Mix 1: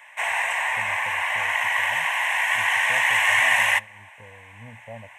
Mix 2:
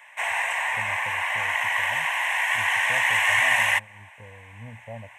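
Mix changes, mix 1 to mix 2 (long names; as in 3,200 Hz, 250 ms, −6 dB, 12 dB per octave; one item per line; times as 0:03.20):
speech: add low-shelf EQ 110 Hz +6.5 dB
reverb: off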